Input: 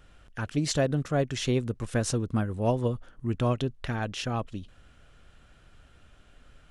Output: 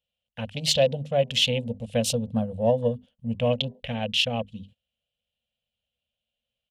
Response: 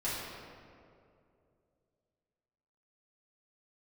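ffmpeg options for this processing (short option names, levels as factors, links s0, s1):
-af "bandreject=f=50:t=h:w=6,bandreject=f=100:t=h:w=6,bandreject=f=150:t=h:w=6,bandreject=f=200:t=h:w=6,bandreject=f=250:t=h:w=6,bandreject=f=300:t=h:w=6,bandreject=f=350:t=h:w=6,bandreject=f=400:t=h:w=6,agate=range=0.158:threshold=0.00447:ratio=16:detection=peak,highpass=54,aemphasis=mode=production:type=75fm,afwtdn=0.0112,firequalizer=gain_entry='entry(150,0);entry(230,6);entry(340,-29);entry(490,10);entry(1300,-13);entry(2900,13);entry(5800,-6);entry(9800,-8)':delay=0.05:min_phase=1"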